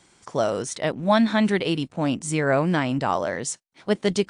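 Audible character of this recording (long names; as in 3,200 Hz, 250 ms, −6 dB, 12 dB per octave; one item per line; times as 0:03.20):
background noise floor −61 dBFS
spectral slope −5.0 dB per octave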